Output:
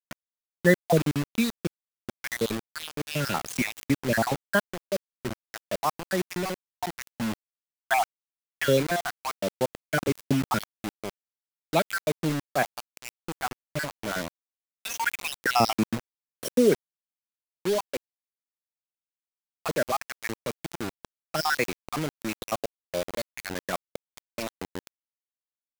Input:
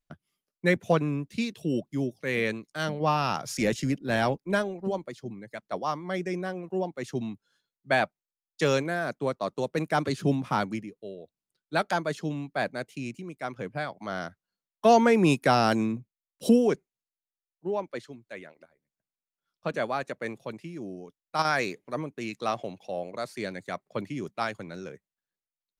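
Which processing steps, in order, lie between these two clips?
random spectral dropouts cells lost 59%; 7.99–10.15 LPF 4400 Hz 12 dB/oct; bit-crush 6-bit; gain +4.5 dB

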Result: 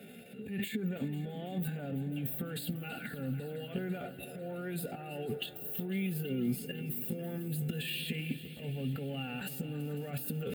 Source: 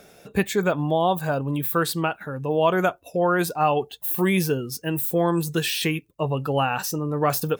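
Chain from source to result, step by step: G.711 law mismatch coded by mu; HPF 110 Hz 12 dB/oct; limiter -18 dBFS, peak gain reduction 11 dB; transient shaper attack -11 dB, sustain +12 dB; reverse; compressor 16:1, threshold -27 dBFS, peak gain reduction 8 dB; reverse; tempo 0.72×; fixed phaser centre 2500 Hz, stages 4; notch comb 320 Hz; small resonant body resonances 230/2800 Hz, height 11 dB, ringing for 50 ms; on a send: multi-head echo 0.166 s, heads second and third, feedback 69%, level -16 dB; on the sum: gain -5.5 dB

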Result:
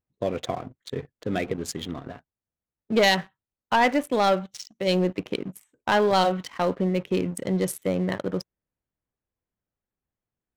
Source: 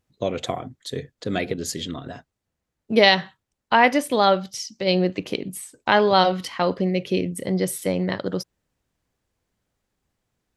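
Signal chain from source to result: Wiener smoothing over 9 samples; 7.2–7.72 bell 5200 Hz +9 dB 1.2 oct; sample leveller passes 2; gain -9 dB

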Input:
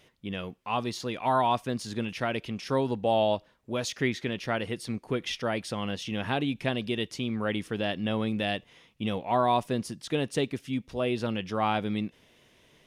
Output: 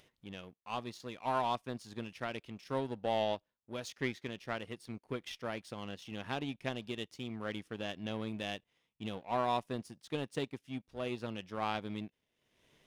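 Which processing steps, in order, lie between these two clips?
power-law curve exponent 1.4; upward compressor, threshold -47 dBFS; gain -5.5 dB

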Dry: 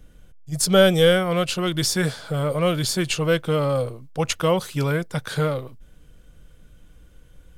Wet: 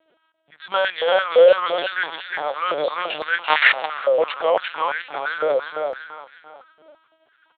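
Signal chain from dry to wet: feedback echo 0.349 s, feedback 34%, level -3 dB; in parallel at -9 dB: hard clip -17.5 dBFS, distortion -9 dB; 3.45–4.05 on the sum: companded quantiser 2-bit; on a send at -18.5 dB: reverb RT60 3.2 s, pre-delay 27 ms; on the sum: LPC vocoder at 8 kHz pitch kept; stepped high-pass 5.9 Hz 560–1800 Hz; gain -4.5 dB

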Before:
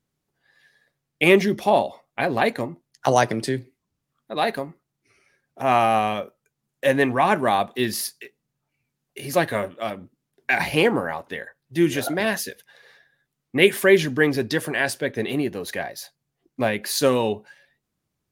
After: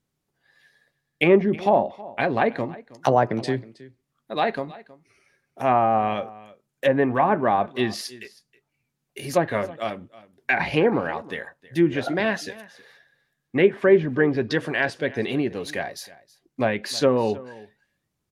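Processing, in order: treble ducked by the level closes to 1200 Hz, closed at -14.5 dBFS; on a send: echo 0.319 s -20 dB

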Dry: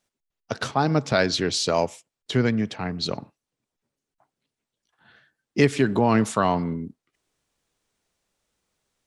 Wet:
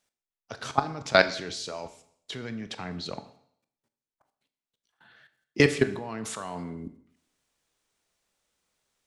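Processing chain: low shelf 500 Hz -6 dB; level quantiser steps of 21 dB; on a send: reverb RT60 0.65 s, pre-delay 22 ms, DRR 11 dB; on the sum: gain +5.5 dB

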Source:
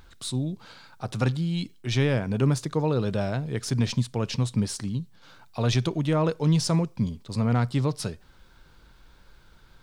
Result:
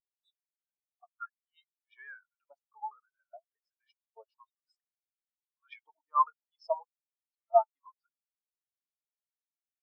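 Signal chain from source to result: repeated pitch sweeps -1.5 st, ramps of 0.592 s; LFO high-pass saw up 1.2 Hz 700–2000 Hz; spectral expander 4:1; gain +1.5 dB

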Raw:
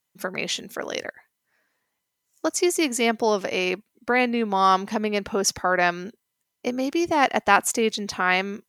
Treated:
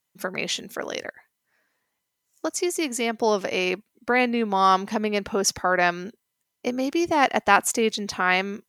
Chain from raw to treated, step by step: 0.88–3.22 compressor 1.5:1, threshold -28 dBFS, peak gain reduction 4.5 dB

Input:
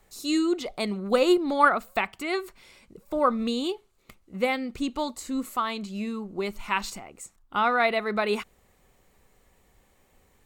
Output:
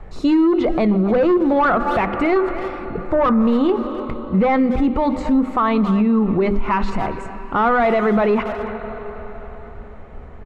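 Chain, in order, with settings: plate-style reverb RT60 4.5 s, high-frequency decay 0.85×, pre-delay 0 ms, DRR 18 dB; 2.35–4.58 dynamic EQ 1100 Hz, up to +6 dB, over -40 dBFS, Q 0.87; soft clip -22.5 dBFS, distortion -8 dB; LPF 1500 Hz 12 dB/oct; low shelf 160 Hz +9.5 dB; notches 50/100/150/200/250/300/350/400 Hz; speakerphone echo 0.28 s, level -17 dB; compressor, threshold -31 dBFS, peak gain reduction 8.5 dB; maximiser +29 dB; gain -9 dB

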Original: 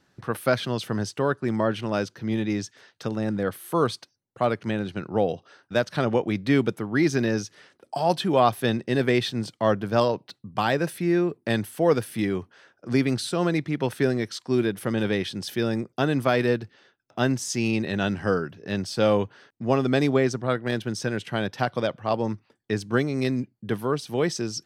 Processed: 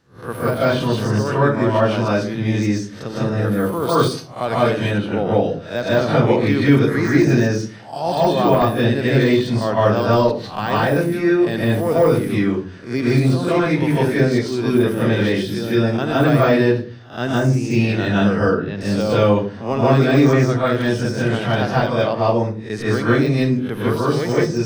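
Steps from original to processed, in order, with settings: spectral swells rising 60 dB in 0.35 s; 18.35–18.81 air absorption 190 m; reverb RT60 0.40 s, pre-delay 0.144 s, DRR -7 dB; de-esser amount 70%; 3.89–4.98 high shelf 4800 Hz +11 dB; gain -1 dB

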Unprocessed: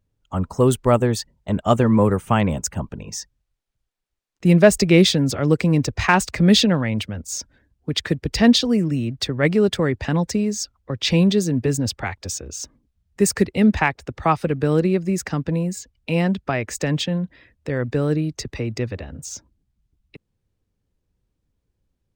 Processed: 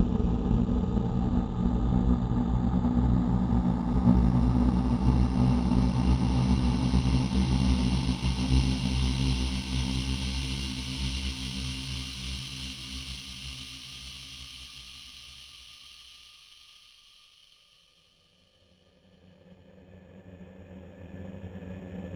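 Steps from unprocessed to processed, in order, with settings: tape start at the beginning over 1.69 s; Paulstretch 32×, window 0.50 s, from 0.71; power-law curve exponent 1.4; gain -2.5 dB

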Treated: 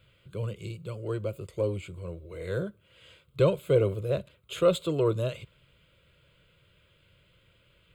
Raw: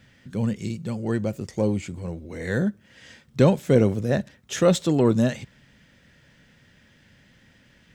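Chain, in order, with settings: fixed phaser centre 1200 Hz, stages 8; gain -2.5 dB

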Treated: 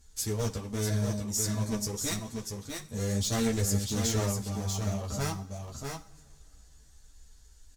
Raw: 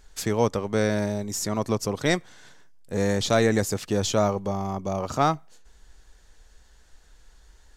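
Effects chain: one-sided fold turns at -24 dBFS; added harmonics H 6 -23 dB, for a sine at -7.5 dBFS; tone controls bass +11 dB, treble +14 dB; notch comb 180 Hz; on a send: echo 0.642 s -5 dB; on the sum: two-slope reverb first 0.44 s, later 3.5 s, from -19 dB, DRR 11 dB; ensemble effect; gain -7.5 dB

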